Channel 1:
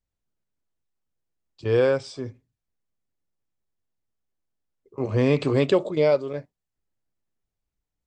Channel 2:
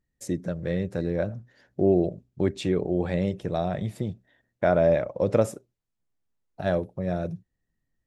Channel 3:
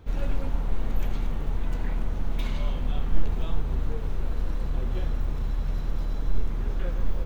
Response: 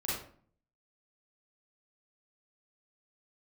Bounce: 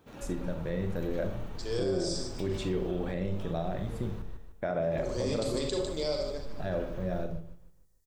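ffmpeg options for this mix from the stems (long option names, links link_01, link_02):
-filter_complex "[0:a]aexciter=amount=10.4:drive=5:freq=3900,volume=-11dB,asplit=3[link_01][link_02][link_03];[link_02]volume=-8.5dB[link_04];[link_03]volume=-11dB[link_05];[1:a]volume=-8dB,asplit=2[link_06][link_07];[link_07]volume=-8.5dB[link_08];[2:a]bandreject=frequency=2100:width=18,acompressor=threshold=-20dB:ratio=6,volume=-6dB,asplit=3[link_09][link_10][link_11];[link_09]atrim=end=4.22,asetpts=PTS-STARTPTS,afade=type=out:start_time=4.216:duration=0.004:curve=hsin[link_12];[link_10]atrim=start=4.22:end=4.82,asetpts=PTS-STARTPTS,volume=0[link_13];[link_11]atrim=start=4.82,asetpts=PTS-STARTPTS,afade=type=in:duration=0.004:curve=hsin[link_14];[link_12][link_13][link_14]concat=n=3:v=0:a=1,asplit=2[link_15][link_16];[link_16]volume=-7dB[link_17];[link_01][link_15]amix=inputs=2:normalize=0,highpass=180,acompressor=threshold=-41dB:ratio=1.5,volume=0dB[link_18];[3:a]atrim=start_sample=2205[link_19];[link_04][link_08]amix=inputs=2:normalize=0[link_20];[link_20][link_19]afir=irnorm=-1:irlink=0[link_21];[link_05][link_17]amix=inputs=2:normalize=0,aecho=0:1:151|302|453|604|755|906:1|0.42|0.176|0.0741|0.0311|0.0131[link_22];[link_06][link_18][link_21][link_22]amix=inputs=4:normalize=0,alimiter=limit=-21.5dB:level=0:latency=1:release=67"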